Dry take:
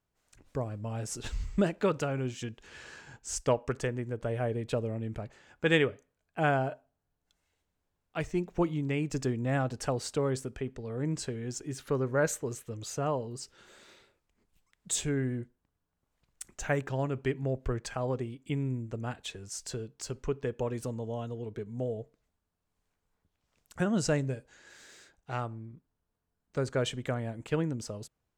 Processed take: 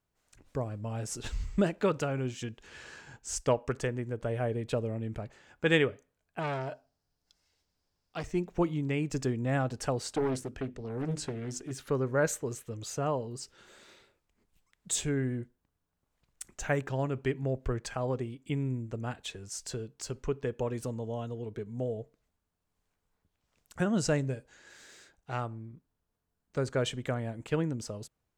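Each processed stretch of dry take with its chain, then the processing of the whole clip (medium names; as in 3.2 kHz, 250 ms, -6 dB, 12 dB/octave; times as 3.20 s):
6.39–8.24 s: peaking EQ 5 kHz +15 dB 0.54 oct + transformer saturation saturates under 1.8 kHz
10.02–11.71 s: hum notches 50/100/150/200/250/300/350 Hz + loudspeaker Doppler distortion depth 0.74 ms
whole clip: none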